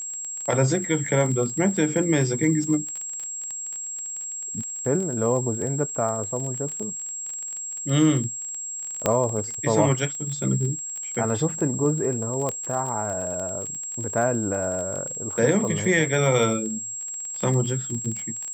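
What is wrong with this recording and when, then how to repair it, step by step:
surface crackle 24 per second −29 dBFS
whistle 7,600 Hz −30 dBFS
0:09.06: click −6 dBFS
0:12.49: click −13 dBFS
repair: click removal
notch filter 7,600 Hz, Q 30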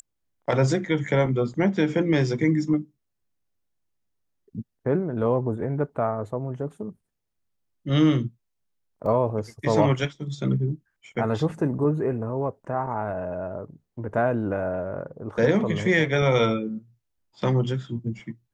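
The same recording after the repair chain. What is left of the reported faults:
0:09.06: click
0:12.49: click

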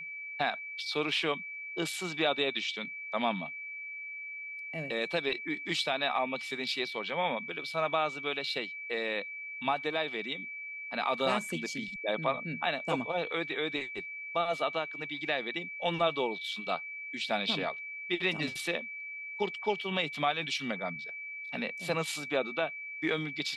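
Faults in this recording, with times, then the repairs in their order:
whistle 2,300 Hz −39 dBFS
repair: notch filter 2,300 Hz, Q 30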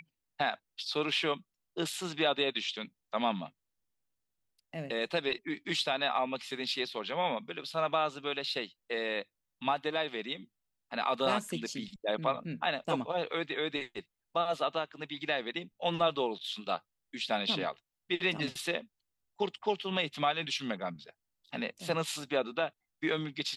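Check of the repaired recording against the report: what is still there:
none of them is left

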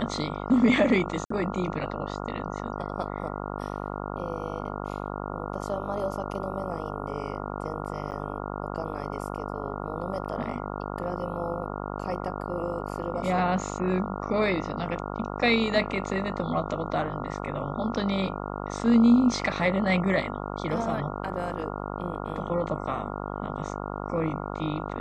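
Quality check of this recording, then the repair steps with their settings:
mains buzz 50 Hz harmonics 28 −34 dBFS
0:01.25–0:01.30: drop-out 54 ms
0:08.11–0:08.12: drop-out 9.4 ms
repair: hum removal 50 Hz, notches 28
repair the gap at 0:01.25, 54 ms
repair the gap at 0:08.11, 9.4 ms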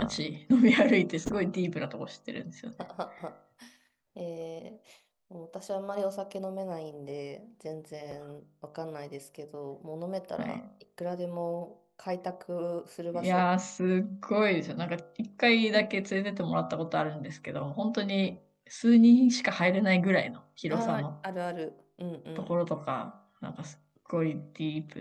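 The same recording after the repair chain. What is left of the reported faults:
none of them is left

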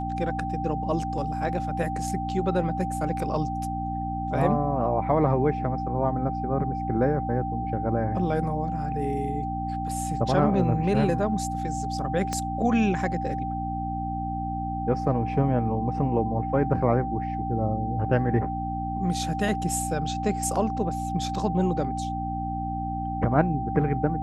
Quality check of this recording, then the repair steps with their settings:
mains hum 60 Hz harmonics 5 −32 dBFS
whistle 780 Hz −30 dBFS
0:12.33: click −15 dBFS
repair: click removal
hum removal 60 Hz, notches 5
notch filter 780 Hz, Q 30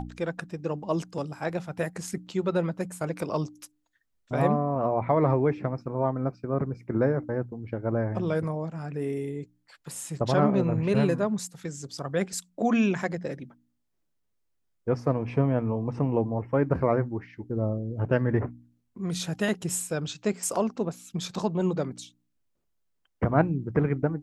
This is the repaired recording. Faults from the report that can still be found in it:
0:12.33: click

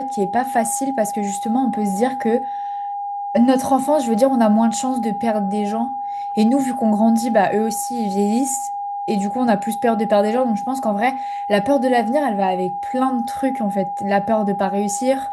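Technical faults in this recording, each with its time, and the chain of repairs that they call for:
whistle 810 Hz −23 dBFS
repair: notch filter 810 Hz, Q 30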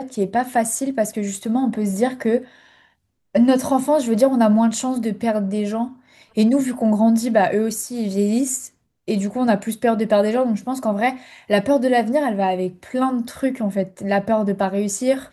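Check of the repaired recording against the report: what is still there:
none of them is left

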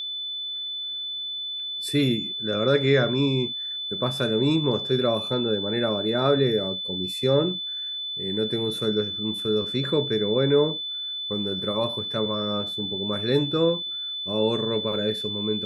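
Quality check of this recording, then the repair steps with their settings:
whistle 3,500 Hz −29 dBFS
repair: notch filter 3,500 Hz, Q 30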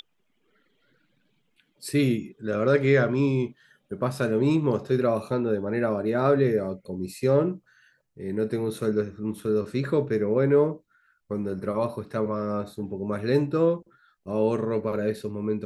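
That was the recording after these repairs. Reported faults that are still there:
none of them is left

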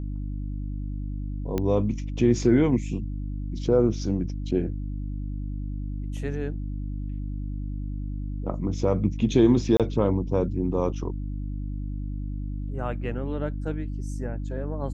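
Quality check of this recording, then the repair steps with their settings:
mains hum 50 Hz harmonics 6 −31 dBFS
0:01.58: click −14 dBFS
0:09.77–0:09.80: drop-out 27 ms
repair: click removal
hum removal 50 Hz, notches 6
repair the gap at 0:09.77, 27 ms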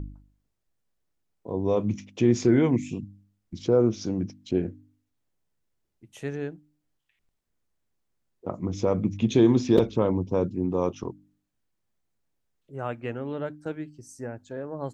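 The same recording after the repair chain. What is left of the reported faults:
none of them is left

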